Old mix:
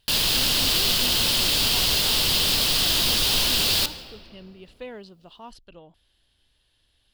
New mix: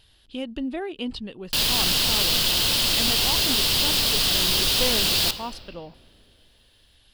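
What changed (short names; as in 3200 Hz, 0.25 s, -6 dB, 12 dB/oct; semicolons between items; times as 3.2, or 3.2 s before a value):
speech +9.0 dB; background: entry +1.45 s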